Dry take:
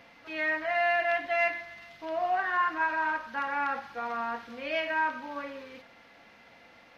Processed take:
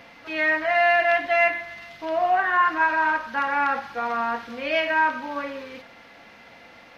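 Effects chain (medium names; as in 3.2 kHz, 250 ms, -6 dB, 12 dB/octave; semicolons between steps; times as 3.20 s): 1.38–2.65 s: dynamic bell 4.9 kHz, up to -6 dB, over -50 dBFS, Q 1.8; trim +7.5 dB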